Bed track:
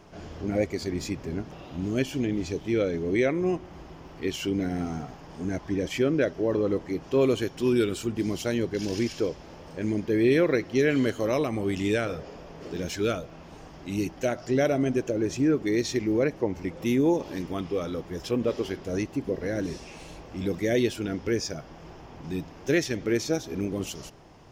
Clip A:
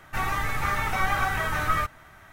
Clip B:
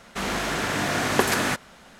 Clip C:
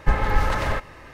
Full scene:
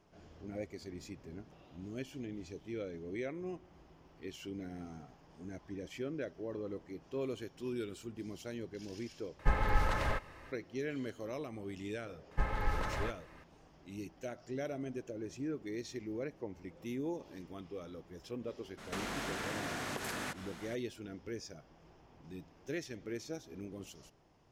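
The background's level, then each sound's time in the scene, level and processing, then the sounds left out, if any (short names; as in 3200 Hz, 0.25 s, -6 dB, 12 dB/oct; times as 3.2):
bed track -16 dB
9.39 replace with C -9.5 dB
12.31 add C -13.5 dB
18.77 add B -2 dB, fades 0.02 s + compressor 10:1, threshold -34 dBFS
not used: A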